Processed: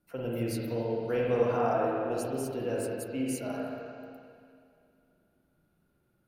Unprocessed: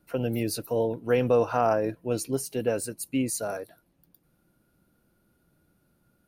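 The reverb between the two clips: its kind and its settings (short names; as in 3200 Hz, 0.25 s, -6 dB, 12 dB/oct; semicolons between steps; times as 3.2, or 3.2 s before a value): spring tank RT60 2.4 s, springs 38/43/49 ms, chirp 45 ms, DRR -4.5 dB; gain -9.5 dB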